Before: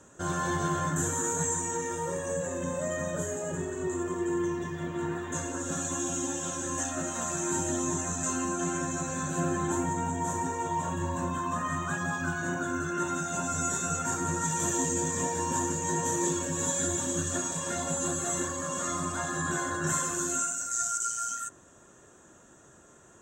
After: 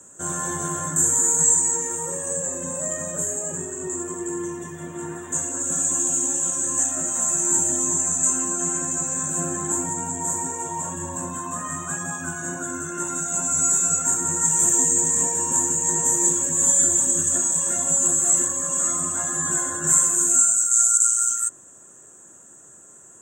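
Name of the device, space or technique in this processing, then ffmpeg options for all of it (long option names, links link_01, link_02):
budget condenser microphone: -af "highpass=100,highshelf=frequency=6100:width_type=q:width=3:gain=10"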